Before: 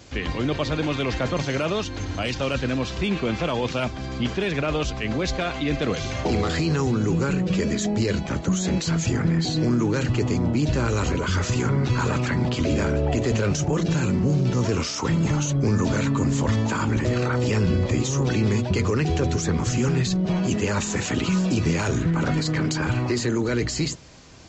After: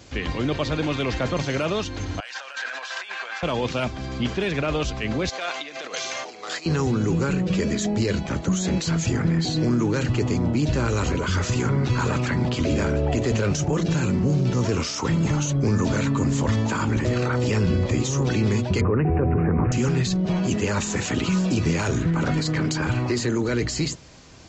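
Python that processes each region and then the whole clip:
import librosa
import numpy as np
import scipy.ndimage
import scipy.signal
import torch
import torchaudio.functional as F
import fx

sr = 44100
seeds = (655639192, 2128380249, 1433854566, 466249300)

y = fx.chain(x, sr, fx.cheby1_highpass(hz=740.0, order=3),
    fx.over_compress(threshold_db=-38.0, ratio=-1.0),
    fx.peak_eq(hz=1600.0, db=13.0, octaves=0.36), at=(2.2, 3.43))
y = fx.chain(y, sr, fx.peak_eq(hz=6100.0, db=4.0, octaves=0.66),
    fx.over_compress(threshold_db=-26.0, ratio=-0.5),
    fx.highpass(hz=630.0, slope=12), at=(5.29, 6.66))
y = fx.chain(y, sr, fx.lowpass(hz=1400.0, slope=12),
    fx.resample_bad(factor=8, down='none', up='filtered'),
    fx.env_flatten(amount_pct=100), at=(18.81, 19.72))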